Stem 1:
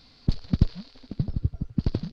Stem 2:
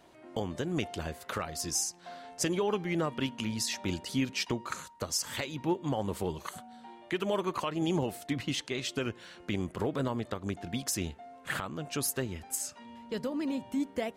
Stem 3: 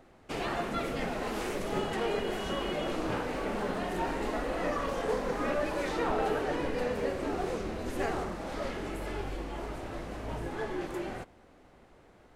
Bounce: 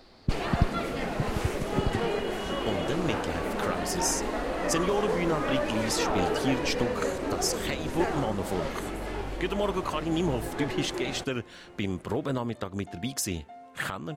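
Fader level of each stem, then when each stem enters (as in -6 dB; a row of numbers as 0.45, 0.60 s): -4.0, +2.0, +2.0 dB; 0.00, 2.30, 0.00 s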